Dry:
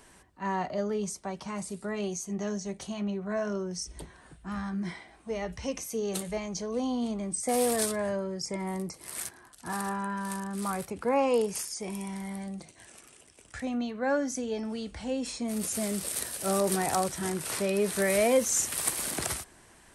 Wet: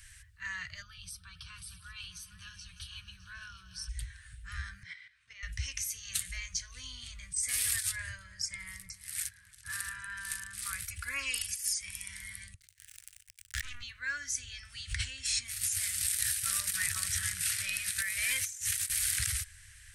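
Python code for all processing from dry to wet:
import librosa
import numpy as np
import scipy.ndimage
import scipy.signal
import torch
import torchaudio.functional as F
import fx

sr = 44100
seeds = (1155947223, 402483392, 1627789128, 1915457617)

y = fx.chain(x, sr, fx.fixed_phaser(hz=2000.0, stages=6),
    fx.echo_opening(ms=152, hz=200, octaves=2, feedback_pct=70, wet_db=-6), at=(0.82, 3.89))
y = fx.chain(y, sr, fx.low_shelf(hz=440.0, db=-4.0),
    fx.level_steps(step_db=11),
    fx.bandpass_edges(low_hz=160.0, high_hz=4400.0), at=(4.83, 5.43))
y = fx.chain(y, sr, fx.echo_filtered(ms=306, feedback_pct=50, hz=830.0, wet_db=-9.0),
    fx.upward_expand(threshold_db=-41.0, expansion=1.5), at=(7.9, 10.08))
y = fx.chain(y, sr, fx.high_shelf(hz=11000.0, db=10.5),
    fx.comb(ms=3.5, depth=0.94), at=(10.85, 11.73))
y = fx.chain(y, sr, fx.power_curve(exponent=3.0),
    fx.pre_swell(db_per_s=27.0), at=(12.54, 13.83))
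y = fx.chain(y, sr, fx.highpass(hz=66.0, slope=12),
    fx.echo_single(ms=234, db=-16.5),
    fx.pre_swell(db_per_s=37.0), at=(14.8, 18.85))
y = scipy.signal.sosfilt(scipy.signal.ellip(3, 1.0, 40, [100.0, 1700.0], 'bandstop', fs=sr, output='sos'), y)
y = fx.low_shelf(y, sr, hz=400.0, db=5.0)
y = fx.over_compress(y, sr, threshold_db=-34.0, ratio=-0.5)
y = y * 10.0 ** (2.5 / 20.0)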